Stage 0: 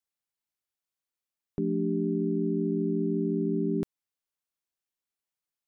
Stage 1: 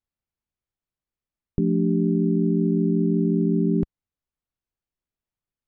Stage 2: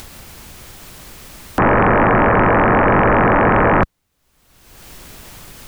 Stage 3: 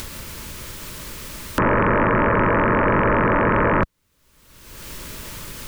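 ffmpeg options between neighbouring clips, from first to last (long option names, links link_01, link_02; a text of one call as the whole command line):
ffmpeg -i in.wav -af "aemphasis=mode=reproduction:type=riaa" out.wav
ffmpeg -i in.wav -af "acompressor=mode=upward:threshold=-34dB:ratio=2.5,aeval=exprs='0.335*sin(PI/2*7.94*val(0)/0.335)':channel_layout=same" out.wav
ffmpeg -i in.wav -af "acompressor=threshold=-26dB:ratio=2,asuperstop=centerf=750:order=4:qfactor=4.3,volume=3.5dB" out.wav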